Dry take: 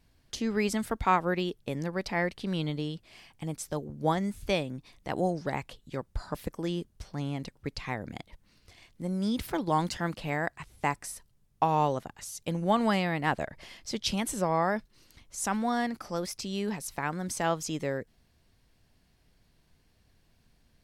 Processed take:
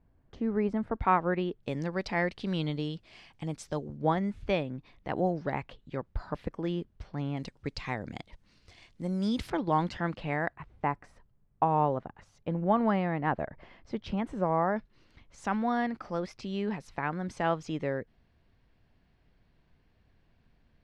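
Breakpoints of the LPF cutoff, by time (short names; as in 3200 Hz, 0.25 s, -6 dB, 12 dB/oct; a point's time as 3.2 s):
1100 Hz
from 0.96 s 2000 Hz
from 1.63 s 5200 Hz
from 3.97 s 2700 Hz
from 7.37 s 6500 Hz
from 9.5 s 2900 Hz
from 10.53 s 1500 Hz
from 14.76 s 2700 Hz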